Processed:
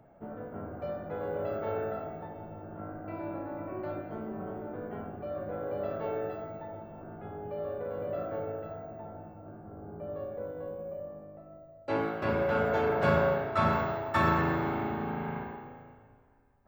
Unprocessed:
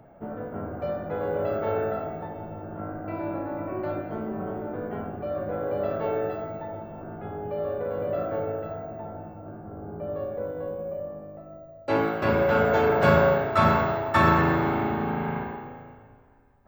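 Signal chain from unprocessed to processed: 11.24–13.73 s: treble shelf 7.7 kHz -6 dB; trim -6.5 dB

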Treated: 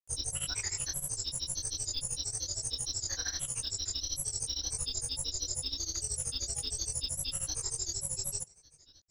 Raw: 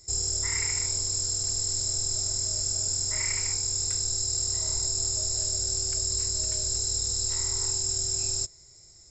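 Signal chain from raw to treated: upward compressor, threshold -46 dBFS; granulator, grains 13 per s, pitch spread up and down by 7 st; trim -4 dB

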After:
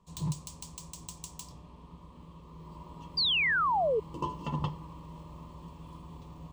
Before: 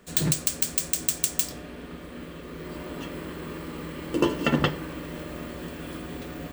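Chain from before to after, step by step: FFT filter 160 Hz 0 dB, 260 Hz -13 dB, 710 Hz -12 dB, 1 kHz +7 dB, 1.5 kHz -26 dB, 2.9 kHz -12 dB, 6.5 kHz -10 dB, 15 kHz -23 dB; painted sound fall, 3.17–4.00 s, 410–4900 Hz -22 dBFS; trim -5 dB

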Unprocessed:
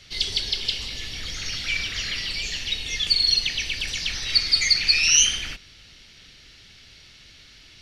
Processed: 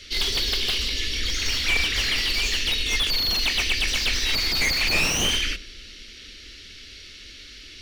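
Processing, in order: treble shelf 3.7 kHz -3 dB; band-stop 930 Hz, Q 19; in parallel at -2 dB: peak limiter -17 dBFS, peak gain reduction 10 dB; on the sum: static phaser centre 340 Hz, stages 4; filtered feedback delay 103 ms, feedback 79%, low-pass 1.1 kHz, level -16.5 dB; slew-rate limiter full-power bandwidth 200 Hz; trim +3.5 dB

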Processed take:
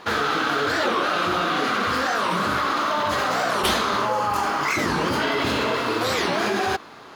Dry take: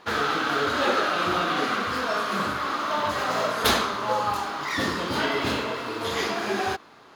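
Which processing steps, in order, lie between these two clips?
4.05–5.22 s: peaking EQ 3.8 kHz -8.5 dB 0.31 oct; in parallel at +2.5 dB: compressor with a negative ratio -30 dBFS, ratio -1; on the sum: warped record 45 rpm, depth 250 cents; trim -2 dB

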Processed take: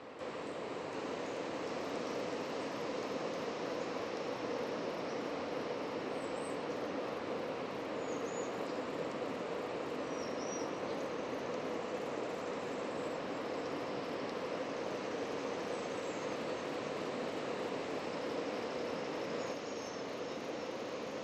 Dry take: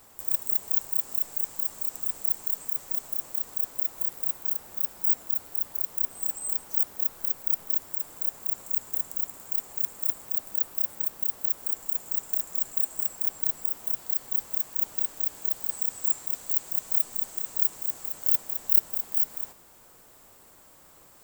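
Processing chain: ever faster or slower copies 702 ms, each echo -3 st, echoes 2; cabinet simulation 170–3600 Hz, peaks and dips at 280 Hz +6 dB, 490 Hz +9 dB, 830 Hz -4 dB, 1.5 kHz -4 dB, 3.4 kHz -5 dB; trim +9.5 dB

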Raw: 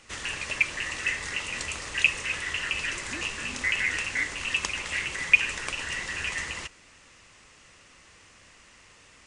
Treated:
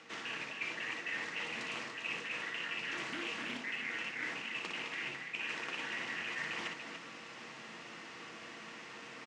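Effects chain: CVSD coder 64 kbps; high-pass 160 Hz 24 dB/octave; reverse; compression 8:1, threshold -43 dBFS, peak gain reduction 27 dB; reverse; distance through air 140 m; loudspeakers at several distances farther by 20 m -5 dB, 99 m -7 dB; on a send at -6 dB: reverberation RT60 0.15 s, pre-delay 3 ms; on the sum: loudspeaker Doppler distortion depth 0.27 ms; trim +5.5 dB

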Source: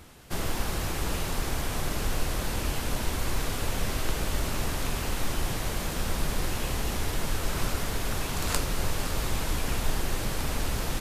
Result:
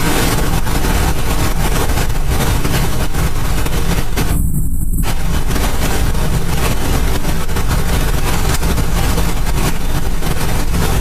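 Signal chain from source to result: spectral selection erased 4.29–5.03 s, 230–7500 Hz; whisper effect; on a send: feedback echo behind a band-pass 578 ms, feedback 55%, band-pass 770 Hz, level -24 dB; on the sum: Chebyshev shaper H 4 -38 dB, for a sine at -17 dBFS; simulated room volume 120 m³, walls furnished, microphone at 3.4 m; level flattener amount 100%; trim -7.5 dB

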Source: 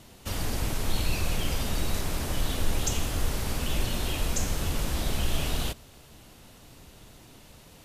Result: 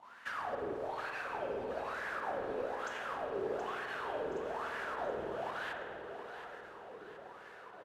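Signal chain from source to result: bass shelf 63 Hz -8 dB; compression, threshold -34 dBFS, peak gain reduction 10 dB; wah-wah 1.1 Hz 400–1700 Hz, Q 10; volume shaper 109 bpm, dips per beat 1, -10 dB, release 68 ms; feedback delay 724 ms, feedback 50%, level -10 dB; on a send at -3 dB: reverberation RT60 1.8 s, pre-delay 50 ms; on the sum: trim +15.5 dB

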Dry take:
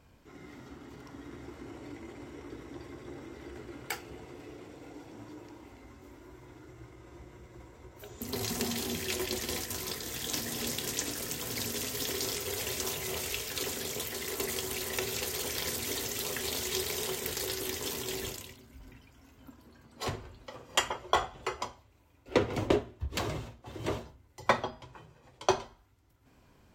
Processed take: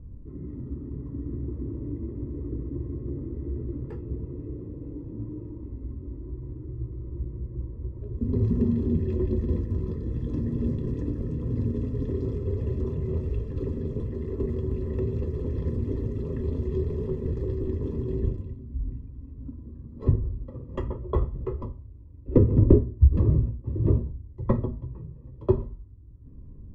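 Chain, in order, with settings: boxcar filter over 59 samples; tilt EQ -4 dB/octave; trim +5.5 dB

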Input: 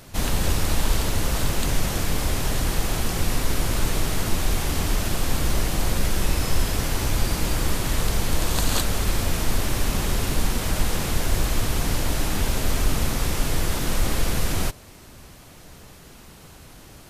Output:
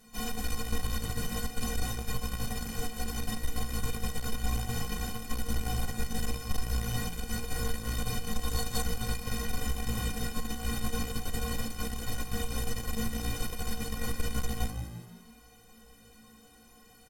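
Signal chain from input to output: harmony voices +5 st -7 dB; inharmonic resonator 220 Hz, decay 0.28 s, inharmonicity 0.03; frequency-shifting echo 171 ms, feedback 44%, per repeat +56 Hz, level -11.5 dB; Chebyshev shaper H 5 -30 dB, 8 -23 dB, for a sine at -13 dBFS

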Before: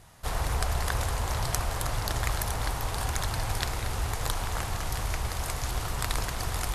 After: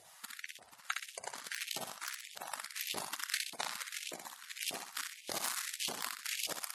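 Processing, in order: amplifier tone stack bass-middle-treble 10-0-1; compressor with a negative ratio -42 dBFS, ratio -0.5; Chebyshev shaper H 7 -9 dB, 8 -29 dB, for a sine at -28 dBFS; on a send: feedback delay 62 ms, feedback 44%, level -4 dB; on the sum: LFO high-pass saw up 1.7 Hz 600–3100 Hz; spectral gate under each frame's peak -15 dB strong; trim +12.5 dB

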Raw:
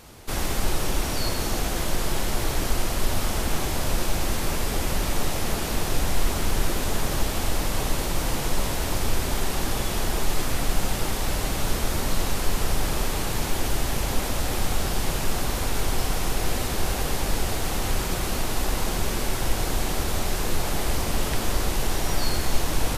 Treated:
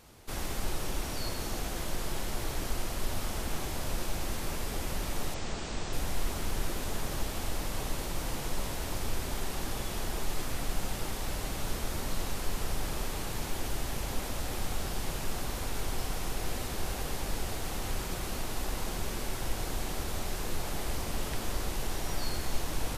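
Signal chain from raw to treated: 5.34–5.93 s: elliptic low-pass 8 kHz, stop band 40 dB; trim -9 dB

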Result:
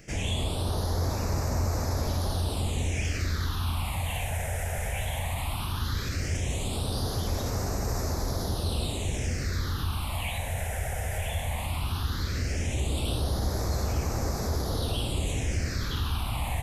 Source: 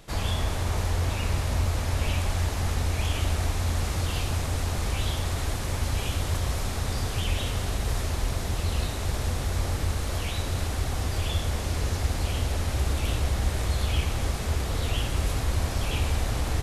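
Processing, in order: bass shelf 84 Hz -10 dB; in parallel at +2.5 dB: peak limiter -25.5 dBFS, peak gain reduction 8.5 dB; on the sum: phase shifter stages 6, 0.16 Hz, lowest notch 300–3100 Hz; trim -3.5 dB

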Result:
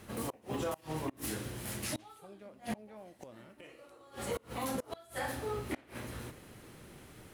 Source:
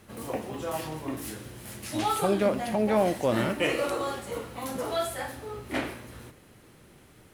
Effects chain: inverted gate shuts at -22 dBFS, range -29 dB; peak limiter -28 dBFS, peak gain reduction 8 dB; trim +1.5 dB

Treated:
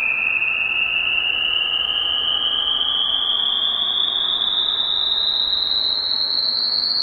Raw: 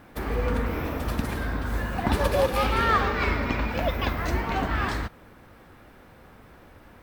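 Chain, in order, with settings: feedback echo behind a band-pass 538 ms, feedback 41%, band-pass 900 Hz, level -5.5 dB; painted sound rise, 5.23–6.37 s, 690–8900 Hz -26 dBFS; Paulstretch 29×, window 0.10 s, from 5.81 s; trim +6 dB

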